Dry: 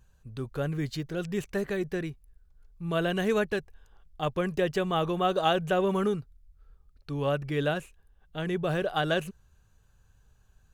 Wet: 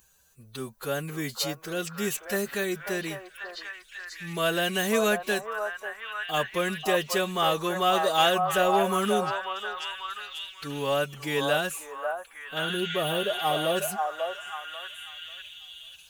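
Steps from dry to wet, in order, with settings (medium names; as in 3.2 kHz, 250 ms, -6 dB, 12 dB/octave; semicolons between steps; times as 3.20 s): RIAA curve recording; spectral replace 8.42–9.15 s, 1.3–8.5 kHz before; dynamic bell 220 Hz, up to +6 dB, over -55 dBFS, Q 4.5; in parallel at -5 dB: saturation -24 dBFS, distortion -13 dB; on the sum: time stretch by phase-locked vocoder 1.5×; on a send: repeats whose band climbs or falls 541 ms, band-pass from 840 Hz, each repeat 0.7 oct, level -1 dB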